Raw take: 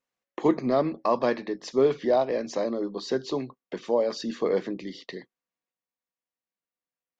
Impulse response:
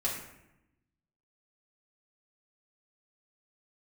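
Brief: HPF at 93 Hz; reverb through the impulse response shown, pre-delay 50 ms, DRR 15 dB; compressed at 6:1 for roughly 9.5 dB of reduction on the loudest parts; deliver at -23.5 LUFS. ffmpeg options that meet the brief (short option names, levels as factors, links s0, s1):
-filter_complex "[0:a]highpass=93,acompressor=threshold=0.0447:ratio=6,asplit=2[s0][s1];[1:a]atrim=start_sample=2205,adelay=50[s2];[s1][s2]afir=irnorm=-1:irlink=0,volume=0.0944[s3];[s0][s3]amix=inputs=2:normalize=0,volume=3.16"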